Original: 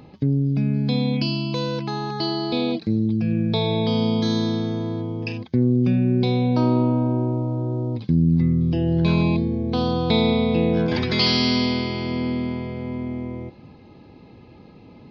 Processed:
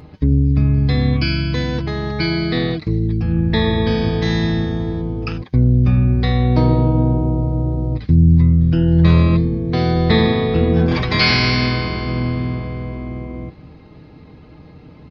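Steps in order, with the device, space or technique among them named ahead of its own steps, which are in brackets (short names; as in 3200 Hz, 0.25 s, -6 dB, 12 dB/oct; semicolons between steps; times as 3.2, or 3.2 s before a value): comb 6.6 ms, depth 60%; octave pedal (harmoniser -12 st 0 dB); gain +1 dB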